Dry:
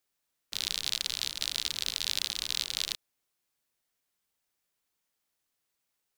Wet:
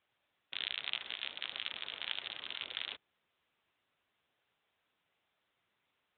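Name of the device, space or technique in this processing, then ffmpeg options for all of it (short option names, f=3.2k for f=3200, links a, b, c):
telephone: -filter_complex "[0:a]asettb=1/sr,asplit=3[a][b][c];[a]atrim=end=2.354[d];[b]atrim=start=2.35:end=2.77,asetpts=PTS-STARTPTS,afade=t=in:d=0.004:c=qsin,afade=t=out:st=0.416:d=0.004:c=qsin,adynamicequalizer=threshold=0.00447:dfrequency=9300:dqfactor=0.79:tfrequency=9300:tqfactor=0.79:attack=5:release=100:ratio=0.375:range=2.5:mode=cutabove:tftype=bell[e];[c]atrim=start=2.766[f];[d][e]acrossfade=d=0.004:c1=hsin:c2=qsin[g];[g][f]acrossfade=d=0.004:c1=qsin:c2=hsin,highpass=350,lowpass=3.3k,volume=3dB" -ar 8000 -c:a libopencore_amrnb -b:a 10200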